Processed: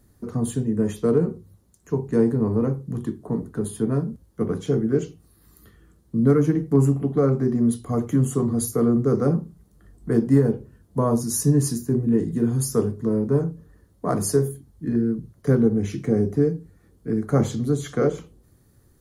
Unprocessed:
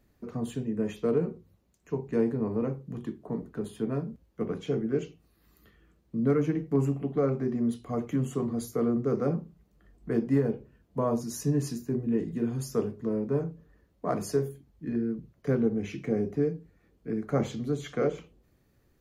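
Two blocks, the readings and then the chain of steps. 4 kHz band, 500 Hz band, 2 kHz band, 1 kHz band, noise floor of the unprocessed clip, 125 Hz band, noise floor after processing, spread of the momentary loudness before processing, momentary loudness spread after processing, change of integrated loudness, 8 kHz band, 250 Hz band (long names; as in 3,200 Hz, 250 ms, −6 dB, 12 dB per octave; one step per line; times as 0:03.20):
+6.0 dB, +6.0 dB, +4.0 dB, +5.5 dB, −68 dBFS, +10.0 dB, −59 dBFS, 10 LU, 10 LU, +7.5 dB, +13.5 dB, +7.5 dB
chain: graphic EQ with 15 bands 100 Hz +6 dB, 630 Hz −4 dB, 2,500 Hz −10 dB, 10,000 Hz +11 dB
level +7.5 dB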